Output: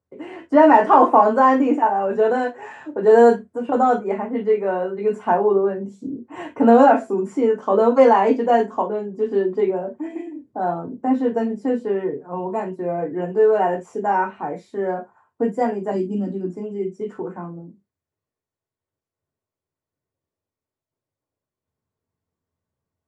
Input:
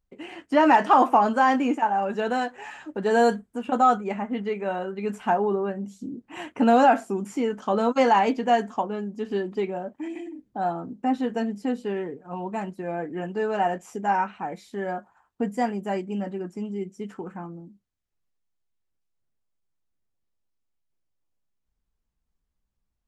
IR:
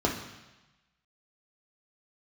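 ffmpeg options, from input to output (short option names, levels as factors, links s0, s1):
-filter_complex "[0:a]asettb=1/sr,asplit=3[s0][s1][s2];[s0]atrim=end=15.914[s3];[s1]atrim=start=15.91:end=16.51,asetpts=PTS-STARTPTS,afade=t=in:d=0.004:c=qsin,afade=t=out:st=0.596:d=0.004:c=qsin,equalizer=f=250:t=o:w=1:g=10,equalizer=f=500:t=o:w=1:g=-8,equalizer=f=1000:t=o:w=1:g=-8,equalizer=f=2000:t=o:w=1:g=-11,equalizer=f=4000:t=o:w=1:g=8[s4];[s2]atrim=start=16.506[s5];[s3][s4]acrossfade=d=0.004:c1=hsin:c2=qsin[s6];[s6][s5]acrossfade=d=0.004:c1=qsin:c2=hsin[s7];[1:a]atrim=start_sample=2205,atrim=end_sample=4410,asetrate=66150,aresample=44100[s8];[s7][s8]afir=irnorm=-1:irlink=0,volume=0.447"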